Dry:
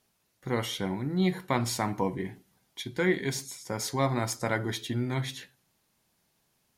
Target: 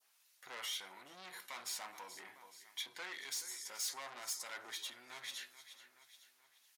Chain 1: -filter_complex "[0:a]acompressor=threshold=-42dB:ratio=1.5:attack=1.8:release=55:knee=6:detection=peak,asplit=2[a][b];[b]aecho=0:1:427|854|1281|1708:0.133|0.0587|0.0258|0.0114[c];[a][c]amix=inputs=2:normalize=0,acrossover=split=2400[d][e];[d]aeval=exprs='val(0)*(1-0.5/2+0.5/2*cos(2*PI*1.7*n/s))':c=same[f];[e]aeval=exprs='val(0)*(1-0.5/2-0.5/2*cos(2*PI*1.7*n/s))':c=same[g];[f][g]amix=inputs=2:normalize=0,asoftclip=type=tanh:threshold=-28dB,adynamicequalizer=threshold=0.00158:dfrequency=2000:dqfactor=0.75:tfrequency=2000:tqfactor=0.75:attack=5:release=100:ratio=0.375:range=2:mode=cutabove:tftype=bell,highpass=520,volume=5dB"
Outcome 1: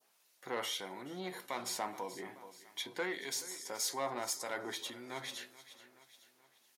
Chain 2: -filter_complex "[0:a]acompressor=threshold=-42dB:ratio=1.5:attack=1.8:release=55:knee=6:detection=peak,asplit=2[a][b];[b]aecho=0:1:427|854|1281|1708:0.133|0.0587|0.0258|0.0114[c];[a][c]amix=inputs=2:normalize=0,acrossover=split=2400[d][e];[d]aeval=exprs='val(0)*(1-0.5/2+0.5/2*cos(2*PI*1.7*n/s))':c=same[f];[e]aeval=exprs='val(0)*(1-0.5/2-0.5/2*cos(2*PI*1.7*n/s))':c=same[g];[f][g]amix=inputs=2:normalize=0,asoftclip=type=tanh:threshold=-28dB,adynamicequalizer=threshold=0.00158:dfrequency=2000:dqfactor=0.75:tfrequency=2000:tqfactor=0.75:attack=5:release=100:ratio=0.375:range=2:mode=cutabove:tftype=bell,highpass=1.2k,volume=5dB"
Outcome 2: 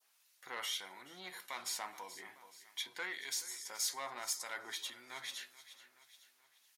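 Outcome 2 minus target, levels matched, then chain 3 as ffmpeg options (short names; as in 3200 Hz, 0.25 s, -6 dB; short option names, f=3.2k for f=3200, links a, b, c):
soft clip: distortion -10 dB
-filter_complex "[0:a]acompressor=threshold=-42dB:ratio=1.5:attack=1.8:release=55:knee=6:detection=peak,asplit=2[a][b];[b]aecho=0:1:427|854|1281|1708:0.133|0.0587|0.0258|0.0114[c];[a][c]amix=inputs=2:normalize=0,acrossover=split=2400[d][e];[d]aeval=exprs='val(0)*(1-0.5/2+0.5/2*cos(2*PI*1.7*n/s))':c=same[f];[e]aeval=exprs='val(0)*(1-0.5/2-0.5/2*cos(2*PI*1.7*n/s))':c=same[g];[f][g]amix=inputs=2:normalize=0,asoftclip=type=tanh:threshold=-38.5dB,adynamicequalizer=threshold=0.00158:dfrequency=2000:dqfactor=0.75:tfrequency=2000:tqfactor=0.75:attack=5:release=100:ratio=0.375:range=2:mode=cutabove:tftype=bell,highpass=1.2k,volume=5dB"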